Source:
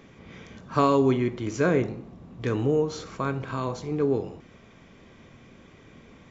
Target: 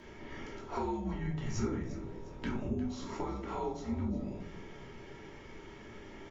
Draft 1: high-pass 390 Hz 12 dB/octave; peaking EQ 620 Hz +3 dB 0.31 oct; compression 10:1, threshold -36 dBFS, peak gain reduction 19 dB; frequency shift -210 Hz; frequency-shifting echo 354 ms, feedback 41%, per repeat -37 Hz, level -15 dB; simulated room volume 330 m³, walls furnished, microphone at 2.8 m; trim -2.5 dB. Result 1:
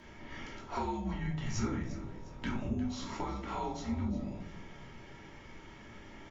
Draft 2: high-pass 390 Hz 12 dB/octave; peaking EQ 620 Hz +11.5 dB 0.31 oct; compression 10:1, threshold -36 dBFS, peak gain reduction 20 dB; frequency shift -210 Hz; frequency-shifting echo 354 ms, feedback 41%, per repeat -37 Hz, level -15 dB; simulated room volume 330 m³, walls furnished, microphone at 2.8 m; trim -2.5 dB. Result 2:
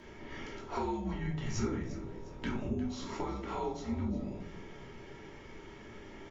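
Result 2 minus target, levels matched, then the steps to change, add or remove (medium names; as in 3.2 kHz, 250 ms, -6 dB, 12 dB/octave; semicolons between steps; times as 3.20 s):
4 kHz band +2.5 dB
add after compression: dynamic bell 3.7 kHz, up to -4 dB, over -55 dBFS, Q 0.72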